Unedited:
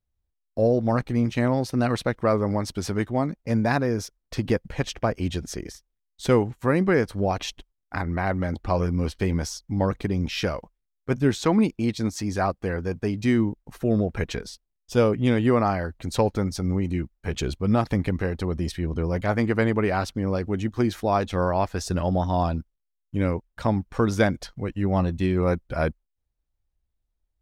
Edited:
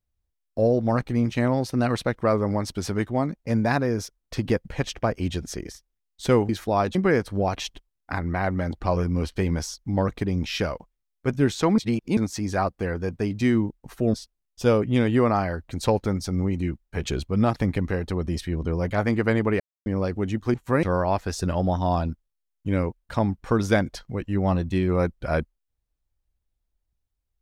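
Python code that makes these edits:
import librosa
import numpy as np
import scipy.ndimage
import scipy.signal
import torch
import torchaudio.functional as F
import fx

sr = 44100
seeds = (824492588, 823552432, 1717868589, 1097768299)

y = fx.edit(x, sr, fx.swap(start_s=6.49, length_s=0.29, other_s=20.85, other_length_s=0.46),
    fx.reverse_span(start_s=11.61, length_s=0.39),
    fx.cut(start_s=13.97, length_s=0.48),
    fx.silence(start_s=19.91, length_s=0.26), tone=tone)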